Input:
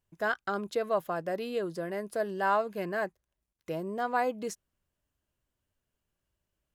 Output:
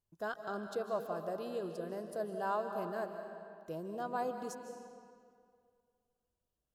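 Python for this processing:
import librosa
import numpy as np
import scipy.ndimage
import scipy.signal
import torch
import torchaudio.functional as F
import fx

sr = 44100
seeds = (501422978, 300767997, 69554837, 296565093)

y = fx.peak_eq(x, sr, hz=2100.0, db=-13.5, octaves=0.67)
y = fx.rev_freeverb(y, sr, rt60_s=2.2, hf_ratio=0.8, predelay_ms=115, drr_db=6.0)
y = y * 10.0 ** (-7.0 / 20.0)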